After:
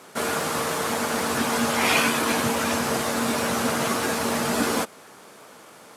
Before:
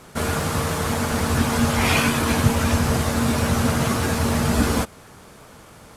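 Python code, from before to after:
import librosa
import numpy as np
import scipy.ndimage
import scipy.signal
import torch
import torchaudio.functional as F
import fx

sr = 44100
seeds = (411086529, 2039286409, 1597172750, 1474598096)

y = scipy.signal.sosfilt(scipy.signal.butter(2, 280.0, 'highpass', fs=sr, output='sos'), x)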